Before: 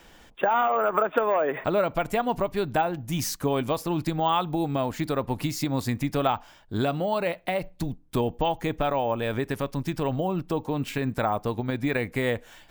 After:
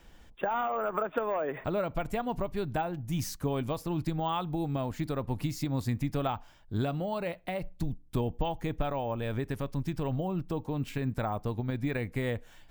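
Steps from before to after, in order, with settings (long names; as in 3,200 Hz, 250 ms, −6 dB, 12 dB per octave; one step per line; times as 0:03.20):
low-shelf EQ 160 Hz +12 dB
level −8.5 dB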